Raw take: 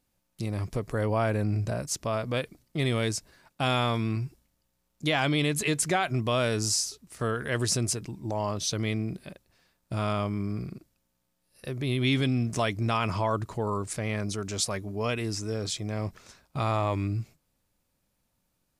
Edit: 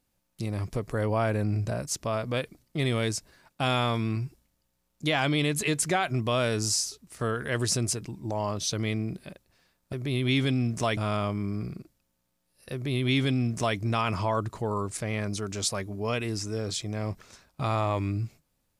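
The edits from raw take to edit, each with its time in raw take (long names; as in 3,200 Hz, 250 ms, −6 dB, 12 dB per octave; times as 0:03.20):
0:11.69–0:12.73: duplicate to 0:09.93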